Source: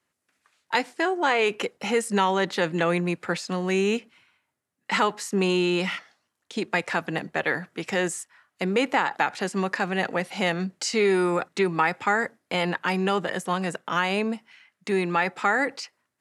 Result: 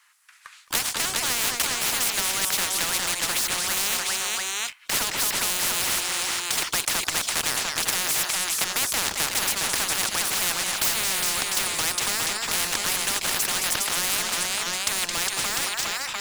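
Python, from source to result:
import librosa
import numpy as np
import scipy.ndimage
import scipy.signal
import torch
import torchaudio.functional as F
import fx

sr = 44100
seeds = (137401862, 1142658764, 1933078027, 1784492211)

y = fx.fade_out_tail(x, sr, length_s=1.7)
y = scipy.signal.sosfilt(scipy.signal.cheby2(4, 40, 510.0, 'highpass', fs=sr, output='sos'), y)
y = fx.leveller(y, sr, passes=2)
y = fx.echo_multitap(y, sr, ms=(218, 410, 699), db=(-14.0, -8.5, -12.0))
y = fx.spectral_comp(y, sr, ratio=10.0)
y = y * 10.0 ** (5.0 / 20.0)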